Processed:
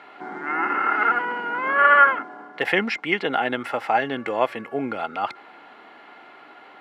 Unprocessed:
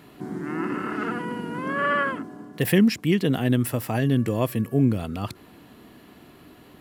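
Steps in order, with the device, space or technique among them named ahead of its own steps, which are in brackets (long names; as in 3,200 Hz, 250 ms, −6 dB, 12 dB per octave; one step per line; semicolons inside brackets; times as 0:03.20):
tin-can telephone (band-pass filter 650–2,600 Hz; hollow resonant body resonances 820/1,400/2,100 Hz, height 12 dB, ringing for 45 ms)
level +7.5 dB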